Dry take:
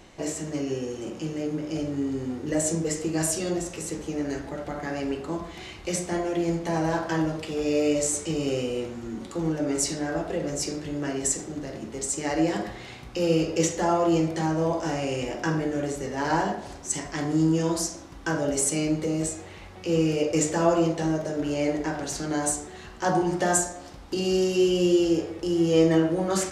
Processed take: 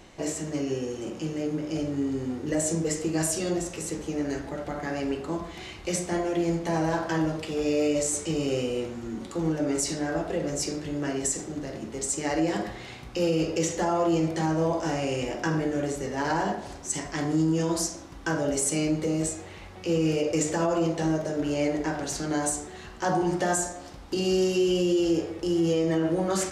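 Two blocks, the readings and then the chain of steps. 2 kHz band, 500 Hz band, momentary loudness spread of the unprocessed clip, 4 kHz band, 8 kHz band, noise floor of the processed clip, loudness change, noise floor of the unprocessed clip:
-0.5 dB, -1.5 dB, 11 LU, -1.0 dB, -1.5 dB, -43 dBFS, -1.0 dB, -43 dBFS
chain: limiter -16.5 dBFS, peak gain reduction 7 dB

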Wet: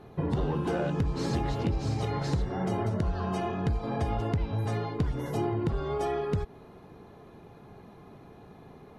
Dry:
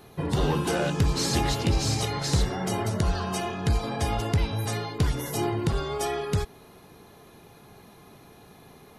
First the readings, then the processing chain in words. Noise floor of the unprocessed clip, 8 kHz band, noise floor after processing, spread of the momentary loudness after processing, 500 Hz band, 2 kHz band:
-52 dBFS, -17.0 dB, -51 dBFS, 2 LU, -2.0 dB, -7.5 dB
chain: LPF 1000 Hz 6 dB/oct; compressor, threshold -27 dBFS, peak gain reduction 8.5 dB; gain +2 dB

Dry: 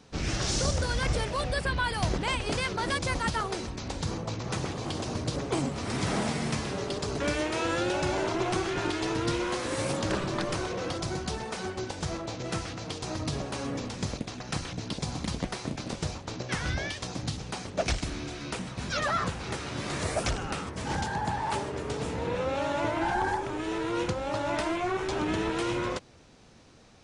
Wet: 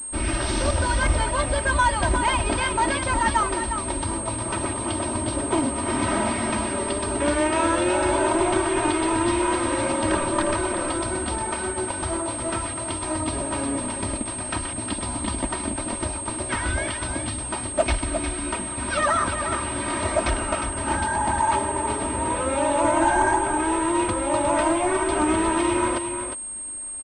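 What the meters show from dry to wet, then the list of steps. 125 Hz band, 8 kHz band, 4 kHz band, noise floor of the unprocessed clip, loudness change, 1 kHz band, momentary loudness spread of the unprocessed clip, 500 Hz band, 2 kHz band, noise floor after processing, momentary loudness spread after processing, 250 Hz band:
+2.5 dB, +13.5 dB, +2.0 dB, -43 dBFS, +7.5 dB, +9.5 dB, 7 LU, +7.0 dB, +6.5 dB, -31 dBFS, 6 LU, +7.5 dB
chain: bell 990 Hz +5.5 dB 0.6 oct; comb 3.2 ms, depth 93%; on a send: echo 0.357 s -7.5 dB; on the sum: pulse-width modulation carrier 8500 Hz; gain +2.5 dB

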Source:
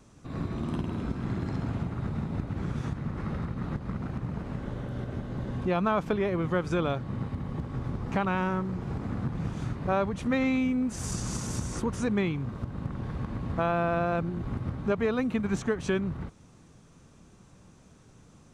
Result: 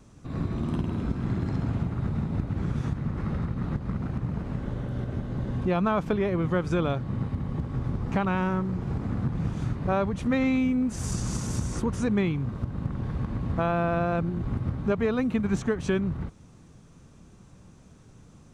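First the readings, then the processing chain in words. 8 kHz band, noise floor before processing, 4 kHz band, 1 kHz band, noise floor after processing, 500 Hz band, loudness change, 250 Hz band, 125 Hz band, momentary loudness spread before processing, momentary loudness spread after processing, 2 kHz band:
0.0 dB, -56 dBFS, 0.0 dB, +0.5 dB, -52 dBFS, +1.0 dB, +2.5 dB, +3.0 dB, +4.0 dB, 8 LU, 6 LU, 0.0 dB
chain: low shelf 250 Hz +5 dB

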